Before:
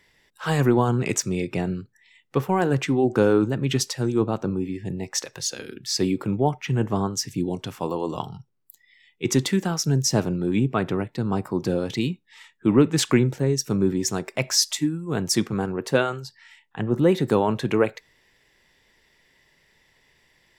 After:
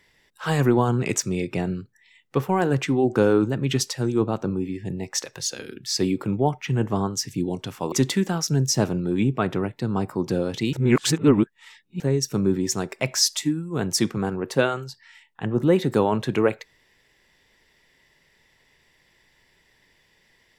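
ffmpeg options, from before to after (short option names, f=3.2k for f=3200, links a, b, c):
-filter_complex "[0:a]asplit=4[a][b][c][d];[a]atrim=end=7.922[e];[b]atrim=start=9.278:end=12.092[f];[c]atrim=start=12.088:end=13.362,asetpts=PTS-STARTPTS,areverse[g];[d]atrim=start=13.358[h];[e][f]acrossfade=d=0.004:c1=hsin:c2=hsin[i];[i][g]acrossfade=d=0.004:c1=hsin:c2=hsin[j];[j][h]acrossfade=d=0.004:c1=hsin:c2=hsin"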